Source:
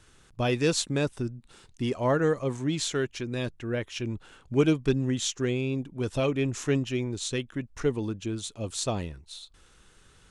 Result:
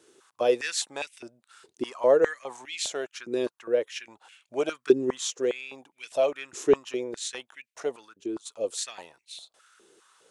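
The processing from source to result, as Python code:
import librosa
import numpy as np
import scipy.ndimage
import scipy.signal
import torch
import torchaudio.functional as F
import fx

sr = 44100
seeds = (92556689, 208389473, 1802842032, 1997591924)

y = fx.peak_eq(x, sr, hz=1600.0, db=-7.0, octaves=2.8)
y = fx.level_steps(y, sr, step_db=18, at=(8.04, 8.45), fade=0.02)
y = fx.filter_held_highpass(y, sr, hz=4.9, low_hz=380.0, high_hz=2300.0)
y = y * 10.0 ** (1.0 / 20.0)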